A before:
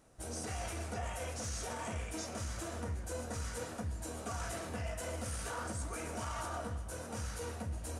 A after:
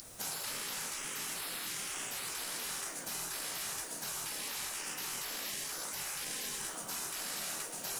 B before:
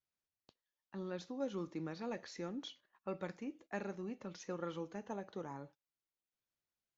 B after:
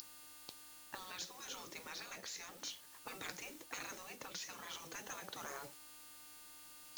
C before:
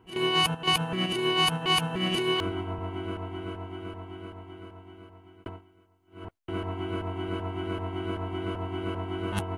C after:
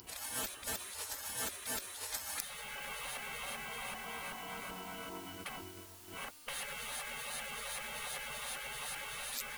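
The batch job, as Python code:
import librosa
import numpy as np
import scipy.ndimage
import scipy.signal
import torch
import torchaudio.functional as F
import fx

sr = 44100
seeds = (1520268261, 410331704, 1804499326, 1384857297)

y = x + 10.0 ** (-38.0 / 20.0) * np.sin(2.0 * np.pi * 4800.0 * np.arange(len(x)) / sr)
y = scipy.signal.lfilter([1.0, -0.8], [1.0], y)
y = fx.quant_float(y, sr, bits=4)
y = fx.spec_gate(y, sr, threshold_db=-30, keep='weak')
y = fx.rider(y, sr, range_db=4, speed_s=0.5)
y = F.gain(torch.from_numpy(y), 18.0).numpy()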